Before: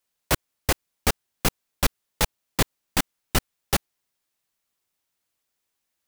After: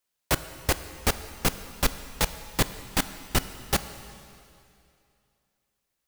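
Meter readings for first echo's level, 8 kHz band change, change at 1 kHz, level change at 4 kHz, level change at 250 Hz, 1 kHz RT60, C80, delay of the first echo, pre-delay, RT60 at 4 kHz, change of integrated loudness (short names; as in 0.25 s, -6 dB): none, -1.5 dB, -1.5 dB, -1.5 dB, -1.5 dB, 2.6 s, 13.0 dB, none, 7 ms, 2.4 s, -1.5 dB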